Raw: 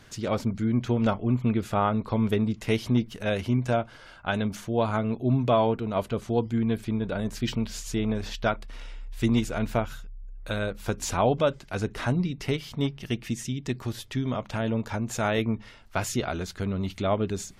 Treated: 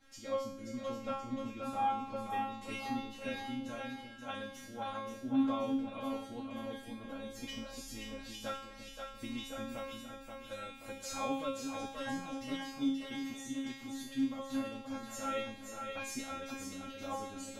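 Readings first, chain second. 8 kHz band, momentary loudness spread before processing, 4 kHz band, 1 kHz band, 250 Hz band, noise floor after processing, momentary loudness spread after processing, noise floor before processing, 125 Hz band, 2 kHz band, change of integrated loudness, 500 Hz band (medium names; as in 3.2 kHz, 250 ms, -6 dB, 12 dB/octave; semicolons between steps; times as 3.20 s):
-9.0 dB, 8 LU, -8.0 dB, -8.0 dB, -10.5 dB, -51 dBFS, 10 LU, -49 dBFS, -25.0 dB, -10.0 dB, -12.0 dB, -13.5 dB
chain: feedback comb 270 Hz, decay 0.63 s, harmonics all, mix 100%; two-band feedback delay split 420 Hz, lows 349 ms, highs 529 ms, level -5 dB; trim +7 dB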